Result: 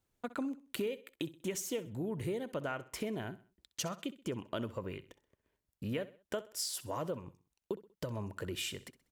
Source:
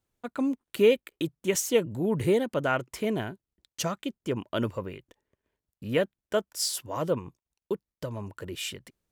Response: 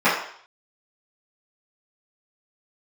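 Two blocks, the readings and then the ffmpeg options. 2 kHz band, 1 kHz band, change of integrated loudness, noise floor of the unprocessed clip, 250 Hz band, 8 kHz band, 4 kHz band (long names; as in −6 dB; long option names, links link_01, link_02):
−10.0 dB, −9.0 dB, −10.5 dB, below −85 dBFS, −9.0 dB, −8.0 dB, −7.5 dB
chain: -filter_complex "[0:a]acompressor=threshold=-35dB:ratio=6,asplit=2[link_01][link_02];[link_02]aecho=0:1:64|128|192:0.141|0.0565|0.0226[link_03];[link_01][link_03]amix=inputs=2:normalize=0"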